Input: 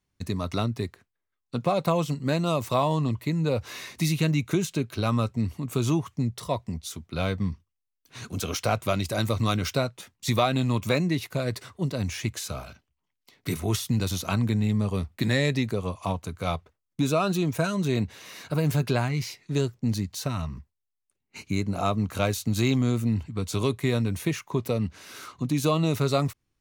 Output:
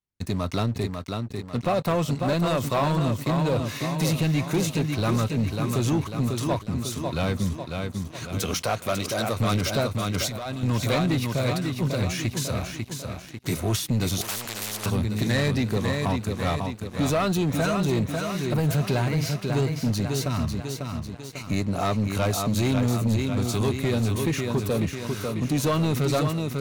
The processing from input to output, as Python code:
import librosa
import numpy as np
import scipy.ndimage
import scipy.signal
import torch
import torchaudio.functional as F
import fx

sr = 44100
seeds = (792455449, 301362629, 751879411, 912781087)

y = fx.echo_feedback(x, sr, ms=546, feedback_pct=50, wet_db=-6.5)
y = fx.leveller(y, sr, passes=3)
y = fx.low_shelf(y, sr, hz=200.0, db=-7.5, at=(8.54, 9.4))
y = fx.over_compress(y, sr, threshold_db=-22.0, ratio=-1.0, at=(10.14, 10.63))
y = fx.spectral_comp(y, sr, ratio=4.0, at=(14.21, 14.86))
y = F.gain(torch.from_numpy(y), -8.0).numpy()